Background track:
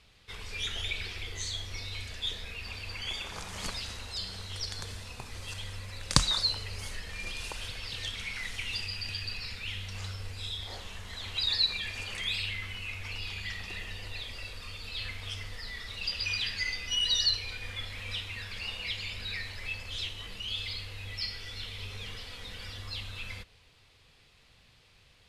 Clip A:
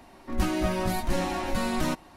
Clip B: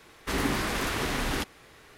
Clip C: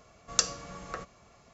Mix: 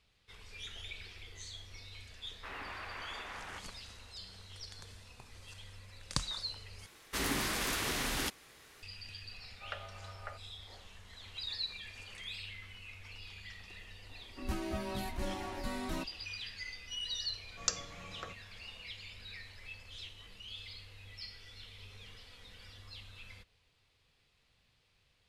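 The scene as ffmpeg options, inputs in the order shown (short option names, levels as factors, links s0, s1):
-filter_complex "[2:a]asplit=2[s0][s1];[3:a]asplit=2[s2][s3];[0:a]volume=0.266[s4];[s0]acrossover=split=590 3100:gain=0.112 1 0.0794[s5][s6][s7];[s5][s6][s7]amix=inputs=3:normalize=0[s8];[s1]highshelf=f=2500:g=9.5[s9];[s2]highpass=f=360:t=q:w=0.5412,highpass=f=360:t=q:w=1.307,lowpass=f=2800:t=q:w=0.5176,lowpass=f=2800:t=q:w=0.7071,lowpass=f=2800:t=q:w=1.932,afreqshift=100[s10];[1:a]afreqshift=16[s11];[s4]asplit=2[s12][s13];[s12]atrim=end=6.864[s14];[s9]atrim=end=1.97,asetpts=PTS-STARTPTS,volume=0.376[s15];[s13]atrim=start=8.826[s16];[s8]atrim=end=1.97,asetpts=PTS-STARTPTS,volume=0.266,afade=t=in:d=0.004:c=hsin,afade=t=out:st=1.966:d=0.004:c=hsin,adelay=2160[s17];[s10]atrim=end=1.53,asetpts=PTS-STARTPTS,volume=0.447,afade=t=in:d=0.004:c=hsin,afade=t=out:st=1.526:d=0.004:c=hsin,adelay=9330[s18];[s11]atrim=end=2.16,asetpts=PTS-STARTPTS,volume=0.266,afade=t=in:d=0.004:c=hsin,afade=t=out:st=2.156:d=0.004:c=hsin,adelay=14090[s19];[s3]atrim=end=1.53,asetpts=PTS-STARTPTS,volume=0.422,afade=t=in:d=0.004:c=hsin,afade=t=out:st=1.526:d=0.004:c=hsin,adelay=17290[s20];[s14][s15]acrossfade=d=0.004:c1=hsin:c2=hsin[s21];[s21][s16]acrossfade=d=0.004:c1=hsin:c2=hsin[s22];[s22][s17][s18][s19][s20]amix=inputs=5:normalize=0"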